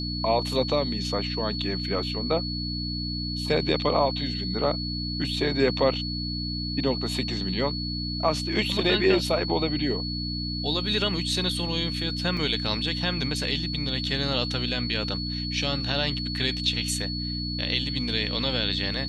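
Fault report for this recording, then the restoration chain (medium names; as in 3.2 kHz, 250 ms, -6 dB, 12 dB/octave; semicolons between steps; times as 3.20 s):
hum 60 Hz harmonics 5 -32 dBFS
whine 4.4 kHz -32 dBFS
12.37 s: dropout 3.5 ms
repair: band-stop 4.4 kHz, Q 30; de-hum 60 Hz, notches 5; interpolate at 12.37 s, 3.5 ms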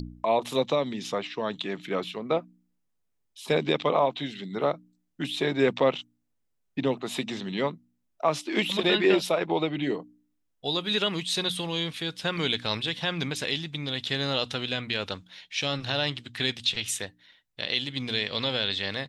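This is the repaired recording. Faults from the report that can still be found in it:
nothing left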